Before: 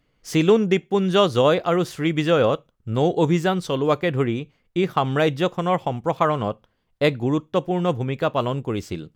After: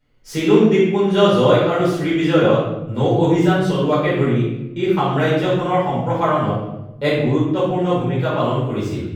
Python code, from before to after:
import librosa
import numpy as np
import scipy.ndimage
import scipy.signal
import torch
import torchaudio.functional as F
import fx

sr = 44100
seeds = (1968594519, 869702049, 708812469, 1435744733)

y = fx.room_shoebox(x, sr, seeds[0], volume_m3=340.0, walls='mixed', distance_m=4.6)
y = y * librosa.db_to_amplitude(-9.0)